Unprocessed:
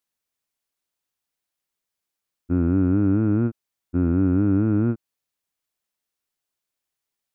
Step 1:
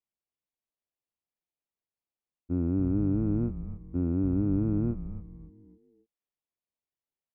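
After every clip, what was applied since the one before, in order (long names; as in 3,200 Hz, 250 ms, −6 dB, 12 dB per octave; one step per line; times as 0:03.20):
low-pass filter 2,100 Hz 12 dB per octave
parametric band 1,500 Hz −11 dB 0.66 octaves
echo with shifted repeats 276 ms, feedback 34%, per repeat −140 Hz, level −9.5 dB
level −7.5 dB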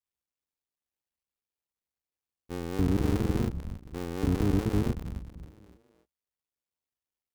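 sub-harmonics by changed cycles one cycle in 2, muted
parametric band 65 Hz +10 dB 0.41 octaves
notch filter 650 Hz, Q 14
level +2 dB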